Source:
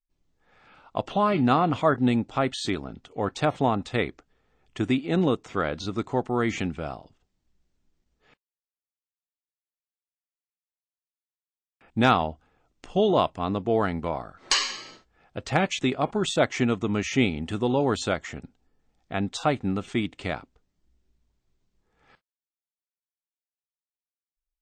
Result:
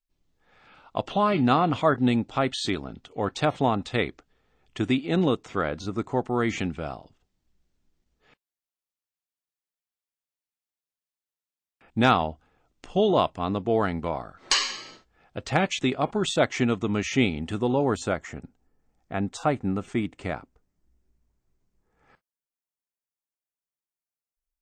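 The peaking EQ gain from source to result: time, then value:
peaking EQ 3.6 kHz 1.1 oct
5.40 s +2.5 dB
5.92 s -8 dB
6.33 s +0.5 dB
17.39 s +0.5 dB
17.96 s -8.5 dB

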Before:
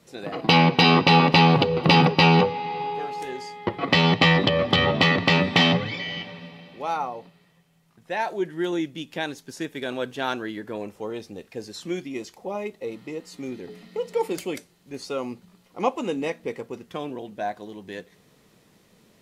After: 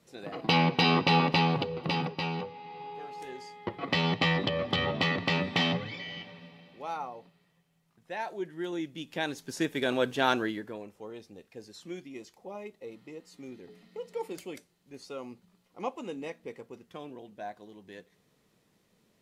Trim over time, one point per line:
1.20 s -7.5 dB
2.40 s -18 dB
3.28 s -9 dB
8.71 s -9 dB
9.62 s +1.5 dB
10.43 s +1.5 dB
10.84 s -11 dB

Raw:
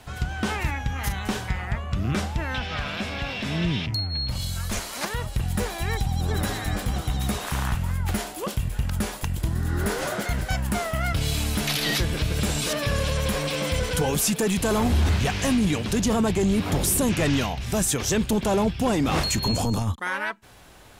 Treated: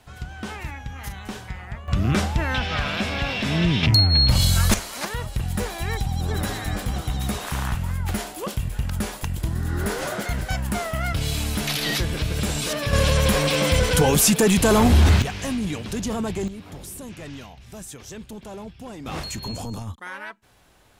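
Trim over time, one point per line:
-6.5 dB
from 1.88 s +4.5 dB
from 3.83 s +11 dB
from 4.74 s 0 dB
from 12.93 s +6 dB
from 15.22 s -4.5 dB
from 16.48 s -15 dB
from 19.06 s -7.5 dB

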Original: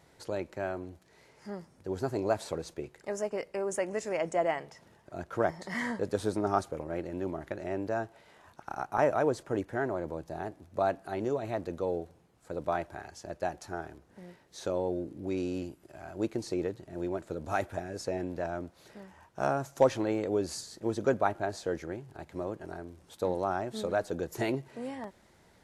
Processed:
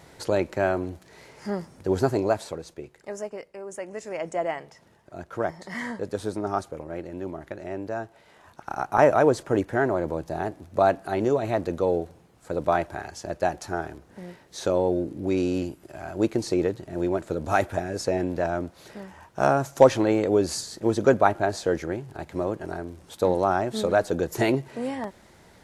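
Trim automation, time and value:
2.00 s +11 dB
2.59 s 0 dB
3.22 s 0 dB
3.55 s -6 dB
4.31 s +1 dB
8.04 s +1 dB
9.01 s +8.5 dB

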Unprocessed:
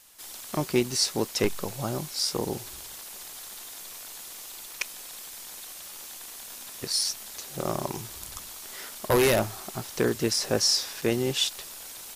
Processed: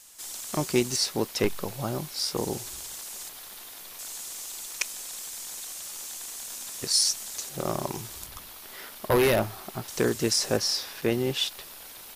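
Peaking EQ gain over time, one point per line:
peaking EQ 7.3 kHz 1 oct
+7 dB
from 0.96 s -3.5 dB
from 2.37 s +5.5 dB
from 3.29 s -4.5 dB
from 3.99 s +7 dB
from 7.49 s +0.5 dB
from 8.26 s -8.5 dB
from 9.88 s +3.5 dB
from 10.57 s -7.5 dB

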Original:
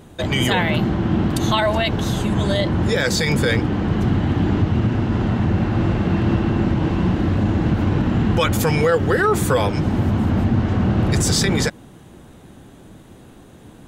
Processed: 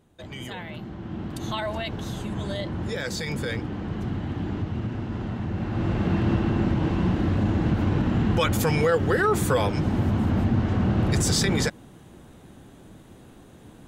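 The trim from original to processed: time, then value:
0.83 s -18 dB
1.58 s -11 dB
5.50 s -11 dB
6.03 s -4.5 dB

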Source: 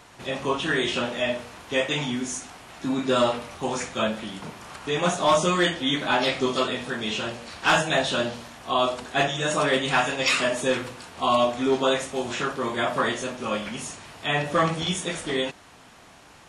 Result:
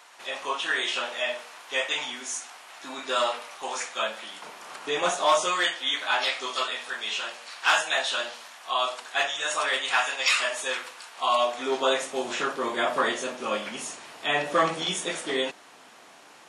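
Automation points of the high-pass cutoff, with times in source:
4.37 s 750 Hz
4.78 s 340 Hz
5.76 s 900 Hz
11.07 s 900 Hz
12.19 s 310 Hz

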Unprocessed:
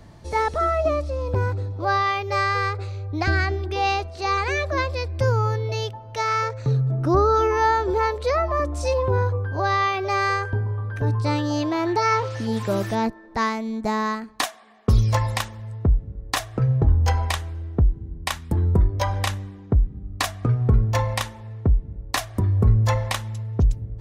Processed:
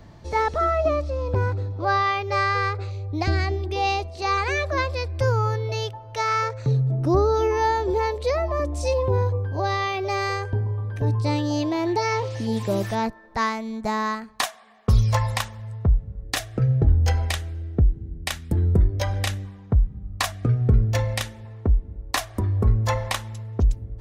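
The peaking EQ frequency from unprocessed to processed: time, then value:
peaking EQ -11 dB 0.57 oct
10 kHz
from 2.91 s 1.5 kHz
from 4.22 s 200 Hz
from 6.66 s 1.4 kHz
from 12.85 s 310 Hz
from 16.23 s 1 kHz
from 19.45 s 330 Hz
from 20.32 s 1 kHz
from 21.45 s 140 Hz

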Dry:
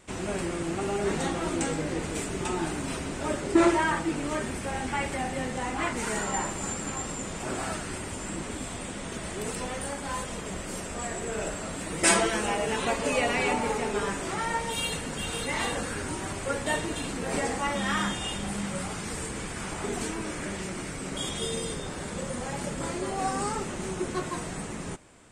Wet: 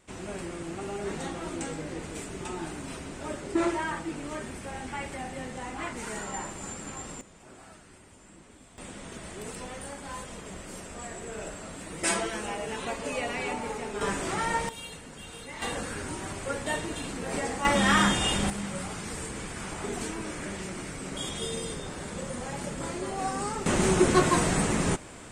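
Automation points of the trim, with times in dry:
-6 dB
from 7.21 s -18 dB
from 8.78 s -6 dB
from 14.01 s +1 dB
from 14.69 s -11 dB
from 15.62 s -2.5 dB
from 17.65 s +6 dB
from 18.50 s -2 dB
from 23.66 s +10 dB

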